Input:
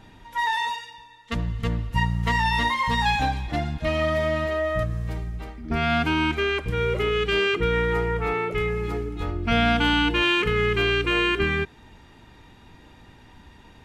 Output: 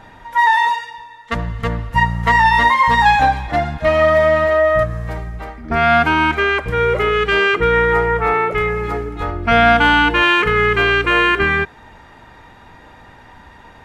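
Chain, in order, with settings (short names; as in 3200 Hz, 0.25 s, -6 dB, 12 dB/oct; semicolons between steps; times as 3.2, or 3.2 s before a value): band shelf 1000 Hz +8.5 dB 2.3 oct; gain +3.5 dB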